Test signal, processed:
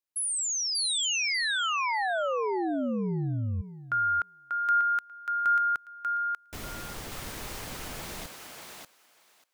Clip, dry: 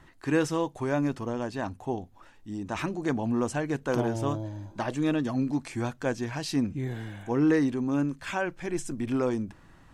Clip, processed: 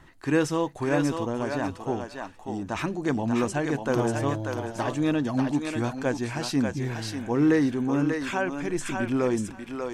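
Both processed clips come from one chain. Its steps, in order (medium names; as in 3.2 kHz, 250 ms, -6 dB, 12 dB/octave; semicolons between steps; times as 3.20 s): thinning echo 590 ms, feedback 15%, high-pass 530 Hz, level -3 dB; trim +2 dB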